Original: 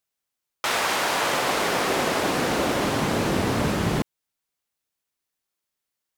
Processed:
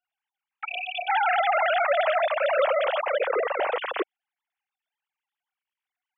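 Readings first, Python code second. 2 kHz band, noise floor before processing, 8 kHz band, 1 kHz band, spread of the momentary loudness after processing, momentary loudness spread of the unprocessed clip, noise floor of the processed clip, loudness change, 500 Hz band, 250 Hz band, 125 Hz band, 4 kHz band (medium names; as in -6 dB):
-1.0 dB, -84 dBFS, under -40 dB, +1.0 dB, 10 LU, 4 LU, under -85 dBFS, -1.0 dB, +2.5 dB, -19.0 dB, under -40 dB, -7.5 dB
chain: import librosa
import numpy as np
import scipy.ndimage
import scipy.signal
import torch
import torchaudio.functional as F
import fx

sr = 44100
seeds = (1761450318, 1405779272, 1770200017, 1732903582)

y = fx.sine_speech(x, sr)
y = fx.spec_erase(y, sr, start_s=0.64, length_s=0.44, low_hz=740.0, high_hz=2300.0)
y = scipy.signal.sosfilt(scipy.signal.butter(4, 320.0, 'highpass', fs=sr, output='sos'), y)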